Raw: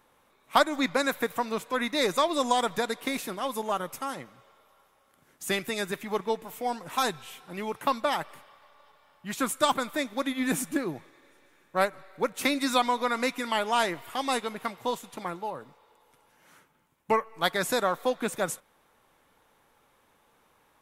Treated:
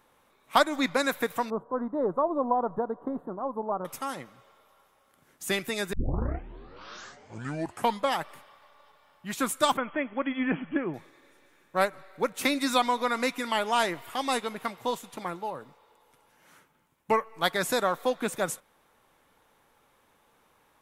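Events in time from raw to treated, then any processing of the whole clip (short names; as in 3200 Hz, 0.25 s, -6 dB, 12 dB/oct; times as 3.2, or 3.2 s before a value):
1.5–3.85 inverse Chebyshev low-pass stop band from 2200 Hz
5.93 tape start 2.27 s
9.77–10.94 brick-wall FIR low-pass 3400 Hz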